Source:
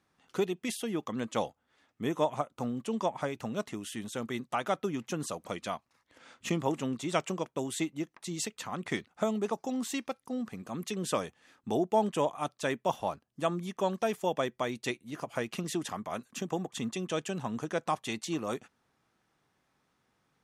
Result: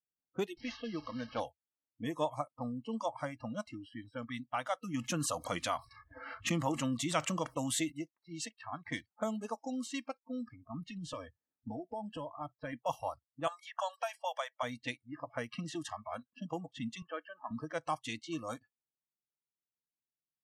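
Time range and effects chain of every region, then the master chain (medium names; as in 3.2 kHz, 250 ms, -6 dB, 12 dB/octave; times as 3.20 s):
0.57–1.40 s: one-bit delta coder 32 kbps, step -40 dBFS + bass shelf 110 Hz -3.5 dB
4.94–7.92 s: dynamic bell 1.2 kHz, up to +3 dB, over -45 dBFS, Q 2.6 + level flattener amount 50%
10.70–12.73 s: bass shelf 190 Hz +6.5 dB + compression 4:1, threshold -32 dBFS
13.47–14.63 s: steep high-pass 600 Hz + three bands compressed up and down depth 100%
17.02–17.51 s: Chebyshev band-pass 220–1600 Hz + tilt EQ +3.5 dB/octave
whole clip: level-controlled noise filter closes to 490 Hz, open at -29 dBFS; spectral noise reduction 29 dB; dynamic bell 440 Hz, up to -3 dB, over -38 dBFS, Q 0.86; trim -3 dB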